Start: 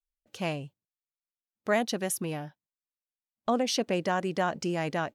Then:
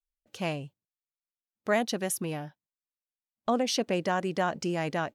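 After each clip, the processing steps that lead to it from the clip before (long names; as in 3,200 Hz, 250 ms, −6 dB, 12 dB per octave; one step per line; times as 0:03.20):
no processing that can be heard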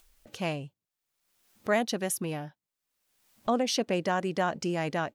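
upward compression, threshold −41 dBFS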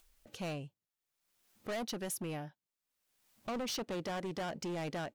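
gain into a clipping stage and back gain 30 dB
level −5 dB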